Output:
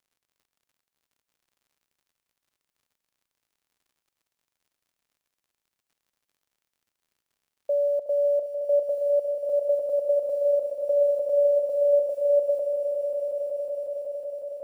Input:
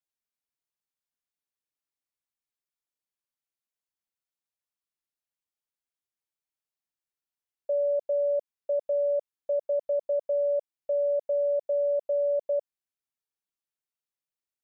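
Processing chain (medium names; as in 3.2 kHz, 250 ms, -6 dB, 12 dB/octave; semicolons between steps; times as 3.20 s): short-mantissa float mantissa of 6-bit; echo with a slow build-up 184 ms, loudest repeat 5, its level -8.5 dB; crackle 85 per s -60 dBFS; trim +2.5 dB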